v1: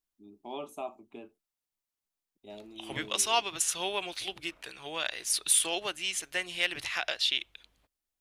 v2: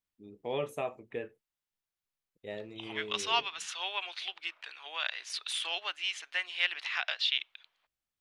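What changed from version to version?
first voice: remove fixed phaser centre 490 Hz, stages 6; second voice: add Butterworth band-pass 1900 Hz, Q 0.58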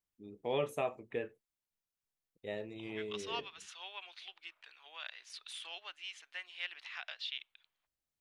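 second voice -11.5 dB

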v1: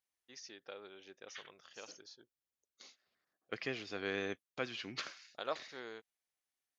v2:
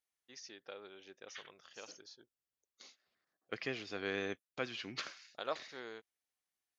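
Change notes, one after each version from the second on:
none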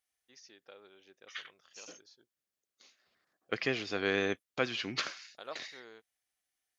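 first voice -5.0 dB; second voice +7.5 dB

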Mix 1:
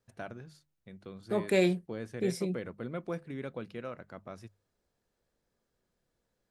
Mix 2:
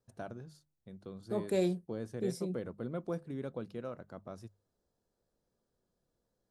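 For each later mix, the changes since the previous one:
second voice -4.0 dB; master: add bell 2200 Hz -11 dB 1.2 oct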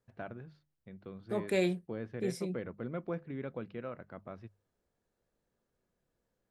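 first voice: add air absorption 320 m; master: add bell 2200 Hz +11 dB 1.2 oct

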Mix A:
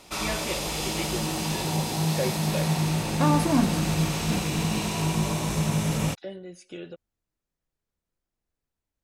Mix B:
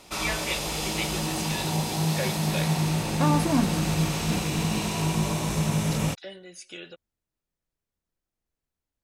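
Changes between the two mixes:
first voice: add tilt shelf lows -8 dB, about 910 Hz; second voice: send -6.5 dB

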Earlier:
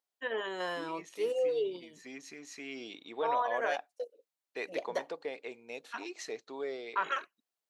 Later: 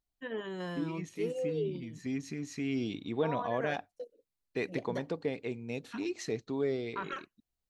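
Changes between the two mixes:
first voice -7.5 dB; master: remove Chebyshev high-pass 610 Hz, order 2

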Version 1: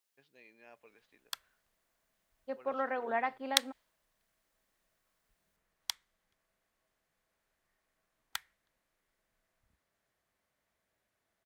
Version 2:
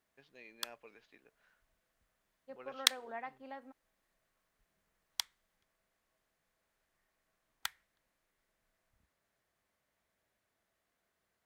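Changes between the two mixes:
first voice +4.0 dB; second voice -11.0 dB; background: entry -0.70 s

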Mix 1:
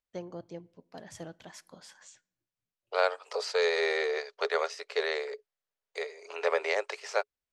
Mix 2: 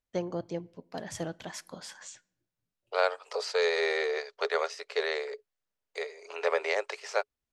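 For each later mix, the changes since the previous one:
first voice +7.5 dB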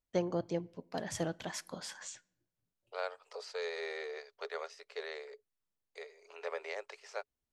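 second voice -12.0 dB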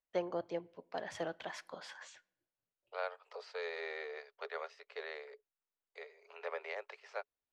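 master: add three-band isolator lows -14 dB, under 390 Hz, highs -17 dB, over 4000 Hz

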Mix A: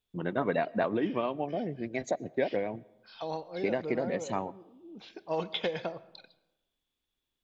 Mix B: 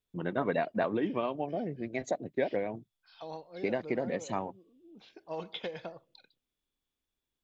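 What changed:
second voice -4.5 dB; reverb: off

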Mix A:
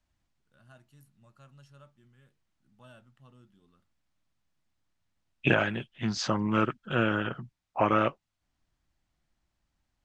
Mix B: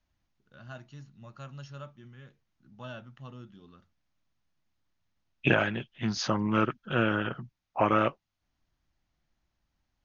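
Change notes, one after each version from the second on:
first voice +11.5 dB; master: add brick-wall FIR low-pass 6900 Hz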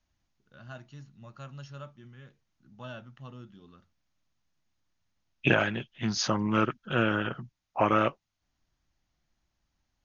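second voice: remove air absorption 73 m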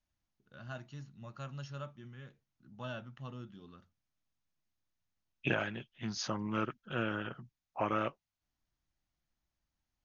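second voice -9.0 dB

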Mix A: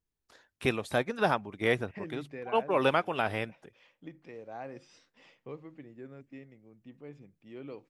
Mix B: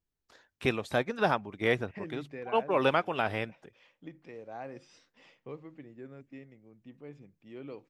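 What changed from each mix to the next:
first voice: add bell 10000 Hz -8.5 dB 0.4 oct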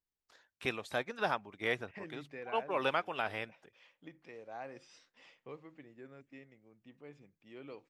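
first voice -3.5 dB; master: add low shelf 480 Hz -9 dB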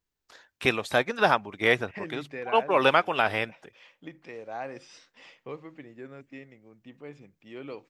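first voice +11.5 dB; second voice +9.0 dB

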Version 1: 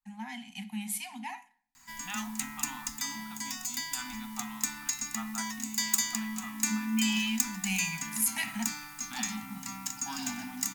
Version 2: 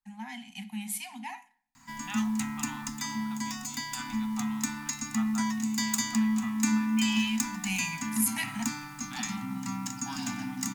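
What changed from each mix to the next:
background: add ten-band EQ 125 Hz +11 dB, 250 Hz +9 dB, 1000 Hz +5 dB, 16000 Hz -8 dB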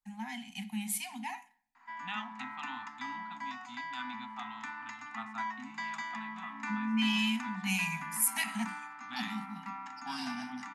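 background: add Butterworth band-pass 1100 Hz, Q 0.7

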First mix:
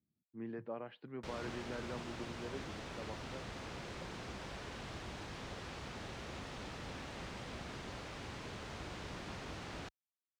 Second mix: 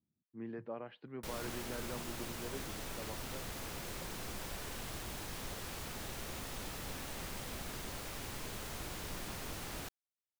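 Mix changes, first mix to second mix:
background: remove air absorption 120 m; master: remove HPF 51 Hz

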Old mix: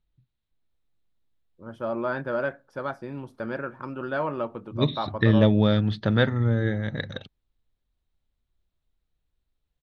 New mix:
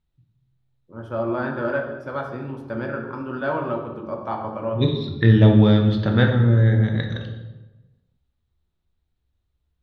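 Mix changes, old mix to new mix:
first voice: entry -0.70 s; reverb: on, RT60 1.1 s

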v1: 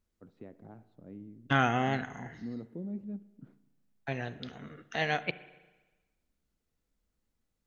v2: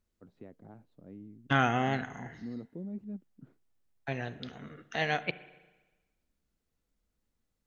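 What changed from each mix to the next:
first voice: send off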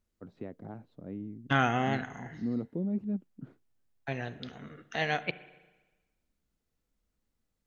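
first voice +8.0 dB

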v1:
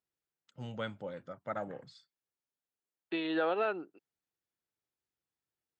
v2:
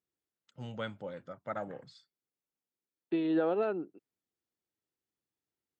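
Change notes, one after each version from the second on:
second voice: add tilt shelf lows +9.5 dB, about 630 Hz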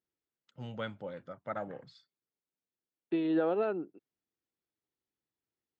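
master: add LPF 5200 Hz

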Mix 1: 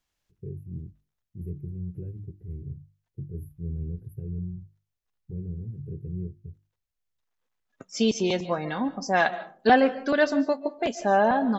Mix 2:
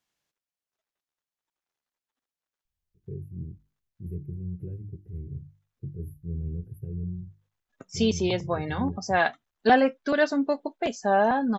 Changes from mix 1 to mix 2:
first voice: entry +2.65 s; reverb: off

